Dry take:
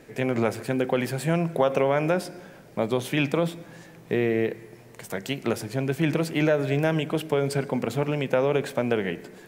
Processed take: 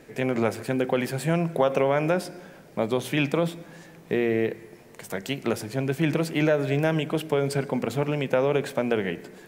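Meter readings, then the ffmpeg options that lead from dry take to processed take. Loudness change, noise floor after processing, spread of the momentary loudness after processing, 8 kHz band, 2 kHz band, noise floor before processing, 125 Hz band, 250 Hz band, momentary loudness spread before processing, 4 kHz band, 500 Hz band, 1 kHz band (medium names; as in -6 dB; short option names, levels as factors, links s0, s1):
0.0 dB, -50 dBFS, 10 LU, 0.0 dB, 0.0 dB, -48 dBFS, -0.5 dB, 0.0 dB, 10 LU, 0.0 dB, 0.0 dB, 0.0 dB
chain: -af "bandreject=f=60:t=h:w=6,bandreject=f=120:t=h:w=6"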